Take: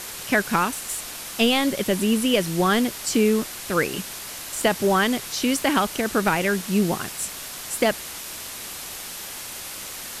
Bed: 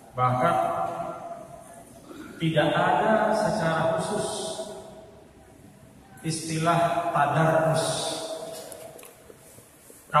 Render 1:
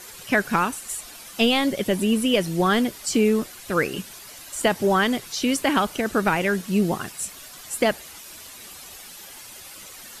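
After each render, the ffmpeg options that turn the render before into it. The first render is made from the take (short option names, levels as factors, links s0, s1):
-af "afftdn=nr=10:nf=-36"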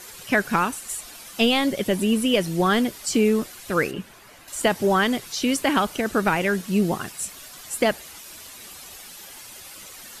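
-filter_complex "[0:a]asettb=1/sr,asplit=3[s0][s1][s2];[s0]atrim=end=3.914[s3];[s1]atrim=start=3.91:end=4.48,asetpts=PTS-STARTPTS,afade=t=in:d=0.004:c=qsin,afade=t=out:st=0.566:d=0.004:c=qsin,acrossover=split=2600[s4][s5];[s5]acompressor=threshold=0.00251:ratio=4:attack=1:release=60[s6];[s4][s6]amix=inputs=2:normalize=0[s7];[s2]atrim=start=4.476[s8];[s3][s7]acrossfade=d=0.004:c1=hsin:c2=qsin[s9];[s9][s8]acrossfade=d=0.004:c1=qsin:c2=hsin"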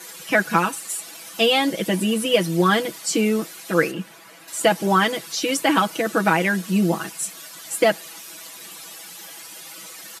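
-af "highpass=f=160:w=0.5412,highpass=f=160:w=1.3066,aecho=1:1:6.1:0.9"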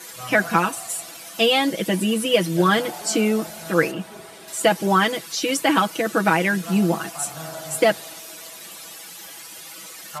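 -filter_complex "[1:a]volume=0.2[s0];[0:a][s0]amix=inputs=2:normalize=0"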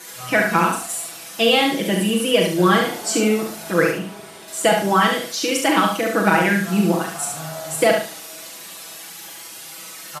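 -filter_complex "[0:a]asplit=2[s0][s1];[s1]adelay=39,volume=0.473[s2];[s0][s2]amix=inputs=2:normalize=0,asplit=2[s3][s4];[s4]aecho=0:1:70|140|210|280:0.596|0.155|0.0403|0.0105[s5];[s3][s5]amix=inputs=2:normalize=0"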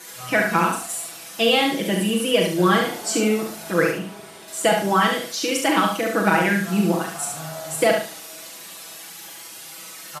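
-af "volume=0.794"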